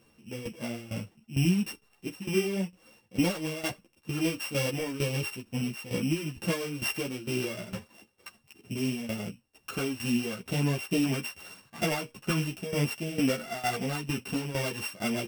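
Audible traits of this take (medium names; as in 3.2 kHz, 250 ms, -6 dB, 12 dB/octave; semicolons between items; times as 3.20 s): a buzz of ramps at a fixed pitch in blocks of 16 samples; tremolo saw down 2.2 Hz, depth 80%; a shimmering, thickened sound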